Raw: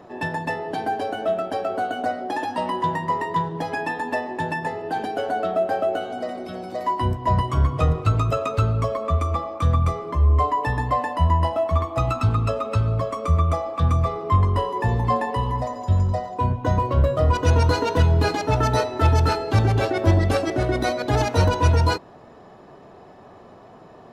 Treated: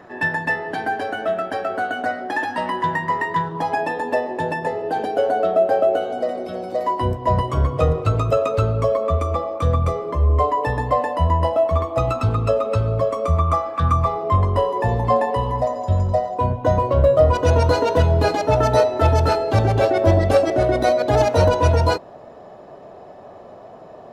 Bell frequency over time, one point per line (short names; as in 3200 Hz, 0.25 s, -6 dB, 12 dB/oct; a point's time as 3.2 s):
bell +10 dB 0.72 oct
3.41 s 1700 Hz
3.9 s 520 Hz
13.19 s 520 Hz
13.73 s 1700 Hz
14.31 s 600 Hz